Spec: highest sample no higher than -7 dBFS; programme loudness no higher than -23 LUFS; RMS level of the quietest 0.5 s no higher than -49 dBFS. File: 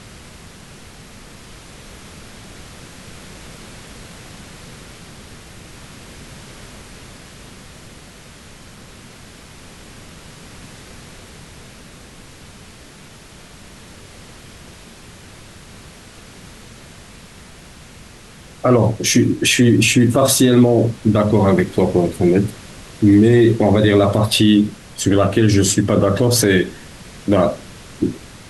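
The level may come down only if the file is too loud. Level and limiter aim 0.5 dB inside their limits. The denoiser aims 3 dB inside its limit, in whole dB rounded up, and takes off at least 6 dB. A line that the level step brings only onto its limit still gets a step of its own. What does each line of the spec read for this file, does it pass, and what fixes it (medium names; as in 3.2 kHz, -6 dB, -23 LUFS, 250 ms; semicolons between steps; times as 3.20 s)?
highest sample -3.5 dBFS: fail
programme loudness -15.0 LUFS: fail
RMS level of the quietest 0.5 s -41 dBFS: fail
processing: trim -8.5 dB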